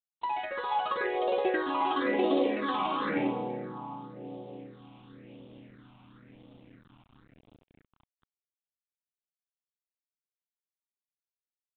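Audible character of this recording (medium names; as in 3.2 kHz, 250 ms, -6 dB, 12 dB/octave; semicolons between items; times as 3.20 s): a quantiser's noise floor 10-bit, dither none; phasing stages 6, 0.96 Hz, lowest notch 460–1700 Hz; G.726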